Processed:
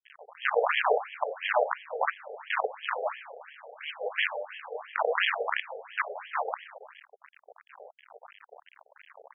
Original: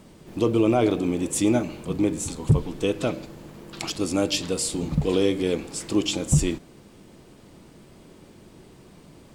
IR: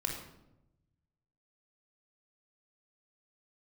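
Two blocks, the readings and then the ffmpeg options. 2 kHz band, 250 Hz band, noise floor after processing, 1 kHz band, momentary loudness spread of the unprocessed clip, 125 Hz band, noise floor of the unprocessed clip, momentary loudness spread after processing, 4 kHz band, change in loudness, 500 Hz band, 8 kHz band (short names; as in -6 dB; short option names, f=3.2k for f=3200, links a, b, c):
+8.0 dB, under -40 dB, -71 dBFS, +5.0 dB, 12 LU, under -40 dB, -50 dBFS, 16 LU, -5.5 dB, -6.0 dB, -5.5 dB, under -40 dB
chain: -filter_complex "[1:a]atrim=start_sample=2205,asetrate=70560,aresample=44100[a];[0:a][a]afir=irnorm=-1:irlink=0,asoftclip=type=tanh:threshold=-15dB,acrusher=bits=4:dc=4:mix=0:aa=0.000001,equalizer=f=7.7k:t=o:w=0.38:g=-3.5,afftfilt=real='re*between(b*sr/1024,560*pow(2400/560,0.5+0.5*sin(2*PI*2.9*pts/sr))/1.41,560*pow(2400/560,0.5+0.5*sin(2*PI*2.9*pts/sr))*1.41)':imag='im*between(b*sr/1024,560*pow(2400/560,0.5+0.5*sin(2*PI*2.9*pts/sr))/1.41,560*pow(2400/560,0.5+0.5*sin(2*PI*2.9*pts/sr))*1.41)':win_size=1024:overlap=0.75,volume=6dB"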